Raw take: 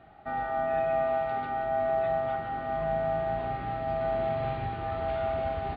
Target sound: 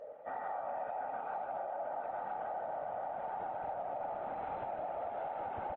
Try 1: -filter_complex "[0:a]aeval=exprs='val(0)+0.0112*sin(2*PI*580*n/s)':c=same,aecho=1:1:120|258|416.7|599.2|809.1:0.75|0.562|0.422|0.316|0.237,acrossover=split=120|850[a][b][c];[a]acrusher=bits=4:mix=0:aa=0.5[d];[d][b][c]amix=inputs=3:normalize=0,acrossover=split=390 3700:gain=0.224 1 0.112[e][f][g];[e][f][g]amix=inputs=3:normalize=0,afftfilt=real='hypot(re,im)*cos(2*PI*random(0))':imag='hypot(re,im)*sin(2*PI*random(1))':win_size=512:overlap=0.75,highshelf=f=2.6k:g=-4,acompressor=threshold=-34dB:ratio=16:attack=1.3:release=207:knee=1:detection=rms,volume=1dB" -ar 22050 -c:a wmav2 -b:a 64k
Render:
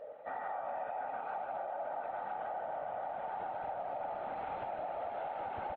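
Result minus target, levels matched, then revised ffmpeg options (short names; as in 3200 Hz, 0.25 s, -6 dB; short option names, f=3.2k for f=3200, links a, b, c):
4000 Hz band +5.5 dB
-filter_complex "[0:a]aeval=exprs='val(0)+0.0112*sin(2*PI*580*n/s)':c=same,aecho=1:1:120|258|416.7|599.2|809.1:0.75|0.562|0.422|0.316|0.237,acrossover=split=120|850[a][b][c];[a]acrusher=bits=4:mix=0:aa=0.5[d];[d][b][c]amix=inputs=3:normalize=0,acrossover=split=390 3700:gain=0.224 1 0.112[e][f][g];[e][f][g]amix=inputs=3:normalize=0,afftfilt=real='hypot(re,im)*cos(2*PI*random(0))':imag='hypot(re,im)*sin(2*PI*random(1))':win_size=512:overlap=0.75,highshelf=f=2.6k:g=-15.5,acompressor=threshold=-34dB:ratio=16:attack=1.3:release=207:knee=1:detection=rms,volume=1dB" -ar 22050 -c:a wmav2 -b:a 64k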